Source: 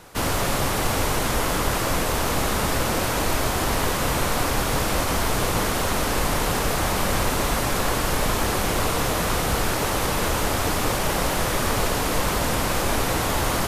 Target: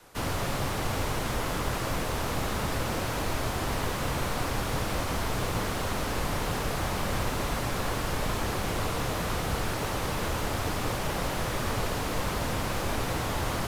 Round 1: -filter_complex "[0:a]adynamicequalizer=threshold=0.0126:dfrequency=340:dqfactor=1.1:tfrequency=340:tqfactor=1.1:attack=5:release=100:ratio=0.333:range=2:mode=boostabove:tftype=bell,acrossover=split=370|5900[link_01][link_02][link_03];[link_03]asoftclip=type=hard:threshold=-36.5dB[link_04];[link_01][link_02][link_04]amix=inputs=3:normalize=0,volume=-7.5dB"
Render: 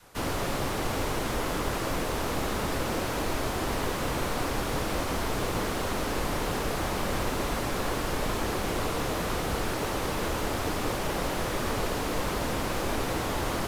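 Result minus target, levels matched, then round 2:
125 Hz band −3.0 dB
-filter_complex "[0:a]adynamicequalizer=threshold=0.0126:dfrequency=110:dqfactor=1.1:tfrequency=110:tqfactor=1.1:attack=5:release=100:ratio=0.333:range=2:mode=boostabove:tftype=bell,acrossover=split=370|5900[link_01][link_02][link_03];[link_03]asoftclip=type=hard:threshold=-36.5dB[link_04];[link_01][link_02][link_04]amix=inputs=3:normalize=0,volume=-7.5dB"

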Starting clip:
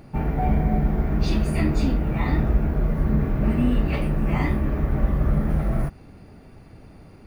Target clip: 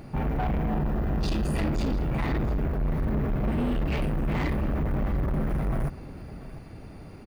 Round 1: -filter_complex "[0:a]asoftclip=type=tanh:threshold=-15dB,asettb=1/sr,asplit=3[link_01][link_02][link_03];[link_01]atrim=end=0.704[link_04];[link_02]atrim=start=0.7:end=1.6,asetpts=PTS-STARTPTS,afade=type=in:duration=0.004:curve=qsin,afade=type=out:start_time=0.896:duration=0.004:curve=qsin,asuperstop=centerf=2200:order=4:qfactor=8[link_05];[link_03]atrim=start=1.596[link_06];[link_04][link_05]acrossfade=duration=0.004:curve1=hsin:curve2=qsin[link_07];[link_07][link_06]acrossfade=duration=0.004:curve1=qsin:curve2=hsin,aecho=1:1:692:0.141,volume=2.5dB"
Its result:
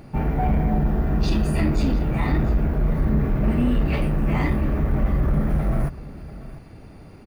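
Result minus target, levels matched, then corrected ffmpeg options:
soft clipping: distortion −10 dB
-filter_complex "[0:a]asoftclip=type=tanh:threshold=-26dB,asettb=1/sr,asplit=3[link_01][link_02][link_03];[link_01]atrim=end=0.704[link_04];[link_02]atrim=start=0.7:end=1.6,asetpts=PTS-STARTPTS,afade=type=in:duration=0.004:curve=qsin,afade=type=out:start_time=0.896:duration=0.004:curve=qsin,asuperstop=centerf=2200:order=4:qfactor=8[link_05];[link_03]atrim=start=1.596[link_06];[link_04][link_05]acrossfade=duration=0.004:curve1=hsin:curve2=qsin[link_07];[link_07][link_06]acrossfade=duration=0.004:curve1=qsin:curve2=hsin,aecho=1:1:692:0.141,volume=2.5dB"

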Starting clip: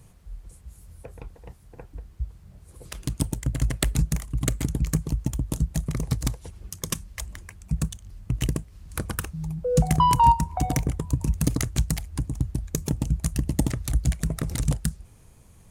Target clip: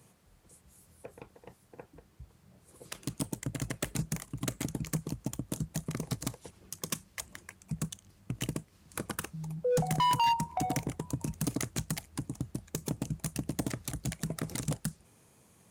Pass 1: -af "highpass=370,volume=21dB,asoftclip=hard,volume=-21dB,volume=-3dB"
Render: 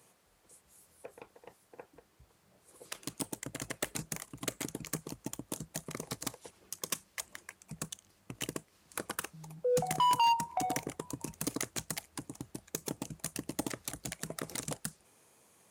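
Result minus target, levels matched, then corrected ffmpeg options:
250 Hz band −4.0 dB
-af "highpass=180,volume=21dB,asoftclip=hard,volume=-21dB,volume=-3dB"

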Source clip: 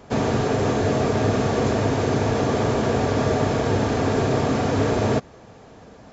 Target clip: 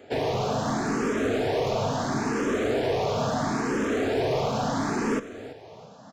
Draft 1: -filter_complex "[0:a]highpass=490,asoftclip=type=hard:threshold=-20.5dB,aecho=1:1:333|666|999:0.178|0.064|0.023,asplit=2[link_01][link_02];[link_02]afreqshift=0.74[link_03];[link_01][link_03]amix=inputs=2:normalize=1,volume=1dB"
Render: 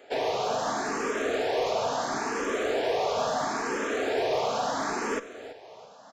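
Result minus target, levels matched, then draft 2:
125 Hz band −13.5 dB
-filter_complex "[0:a]highpass=160,asoftclip=type=hard:threshold=-20.5dB,aecho=1:1:333|666|999:0.178|0.064|0.023,asplit=2[link_01][link_02];[link_02]afreqshift=0.74[link_03];[link_01][link_03]amix=inputs=2:normalize=1,volume=1dB"

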